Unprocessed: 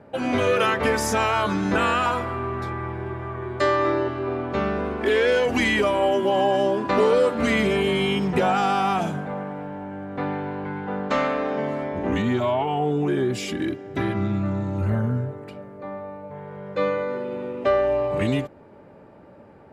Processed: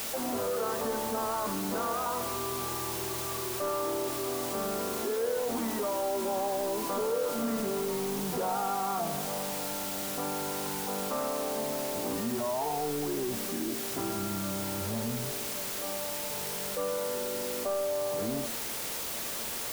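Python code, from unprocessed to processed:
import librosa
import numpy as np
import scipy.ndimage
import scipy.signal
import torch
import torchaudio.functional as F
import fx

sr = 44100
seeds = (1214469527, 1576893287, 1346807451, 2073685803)

y = fx.delta_mod(x, sr, bps=64000, step_db=-37.0)
y = fx.highpass(y, sr, hz=140.0, slope=6)
y = 10.0 ** (-17.5 / 20.0) * np.tanh(y / 10.0 ** (-17.5 / 20.0))
y = scipy.signal.sosfilt(scipy.signal.butter(4, 1200.0, 'lowpass', fs=sr, output='sos'), y)
y = fx.low_shelf(y, sr, hz=260.0, db=-7.0)
y = fx.comb_fb(y, sr, f0_hz=230.0, decay_s=0.76, harmonics='all', damping=0.0, mix_pct=80)
y = y + 10.0 ** (-20.5 / 20.0) * np.pad(y, (int(87 * sr / 1000.0), 0))[:len(y)]
y = fx.quant_dither(y, sr, seeds[0], bits=8, dither='triangular')
y = fx.env_flatten(y, sr, amount_pct=50)
y = y * librosa.db_to_amplitude(4.0)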